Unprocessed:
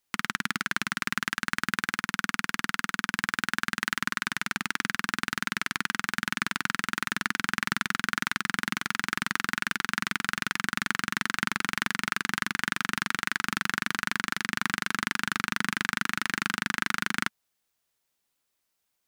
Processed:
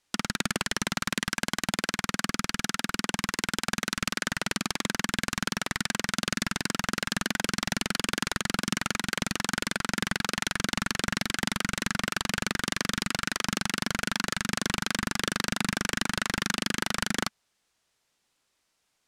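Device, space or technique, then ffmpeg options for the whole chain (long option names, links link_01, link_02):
overflowing digital effects unit: -af "aeval=exprs='(mod(11.2*val(0)+1,2)-1)/11.2':channel_layout=same,lowpass=8200,volume=7dB"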